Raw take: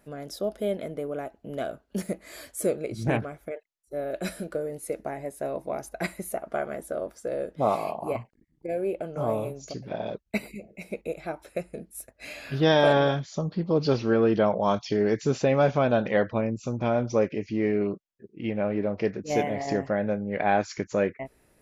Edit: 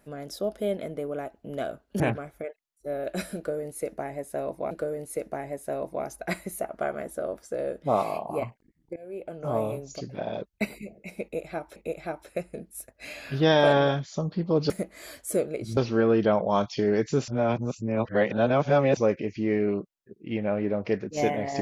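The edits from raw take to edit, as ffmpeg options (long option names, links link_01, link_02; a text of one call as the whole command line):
ffmpeg -i in.wav -filter_complex "[0:a]asplit=9[link_01][link_02][link_03][link_04][link_05][link_06][link_07][link_08][link_09];[link_01]atrim=end=2.002[link_10];[link_02]atrim=start=3.068:end=5.782[link_11];[link_03]atrim=start=4.438:end=8.69,asetpts=PTS-STARTPTS,afade=type=out:start_time=4.248:duration=0.004:curve=hsin:silence=0.0630957[link_12];[link_04]atrim=start=8.69:end=11.492,asetpts=PTS-STARTPTS,afade=type=in:duration=0.59:silence=0.0630957[link_13];[link_05]atrim=start=10.958:end=13.902[link_14];[link_06]atrim=start=1.998:end=3.072[link_15];[link_07]atrim=start=13.898:end=15.412[link_16];[link_08]atrim=start=15.408:end=17.102,asetpts=PTS-STARTPTS,areverse[link_17];[link_09]atrim=start=17.098[link_18];[link_10][link_11]acrossfade=duration=0.004:curve1=hsin:curve2=hsin[link_19];[link_12][link_13]concat=n=2:v=0:a=1[link_20];[link_19][link_20]acrossfade=duration=0.004:curve1=hsin:curve2=hsin[link_21];[link_21][link_14]acrossfade=duration=0.004:curve1=hsin:curve2=hsin[link_22];[link_22][link_15]acrossfade=duration=0.004:curve1=hsin:curve2=hsin[link_23];[link_23][link_16]acrossfade=duration=0.004:curve1=hsin:curve2=hsin[link_24];[link_24][link_17]acrossfade=duration=0.004:curve1=hsin:curve2=hsin[link_25];[link_25][link_18]acrossfade=duration=0.004:curve1=hsin:curve2=hsin" out.wav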